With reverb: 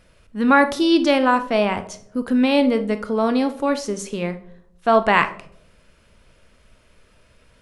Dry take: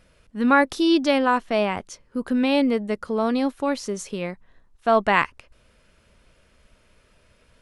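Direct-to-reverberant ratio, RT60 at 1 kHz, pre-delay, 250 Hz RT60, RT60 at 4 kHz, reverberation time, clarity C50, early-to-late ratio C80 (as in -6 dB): 10.0 dB, 0.55 s, 23 ms, 0.85 s, 0.35 s, 0.70 s, 14.0 dB, 18.5 dB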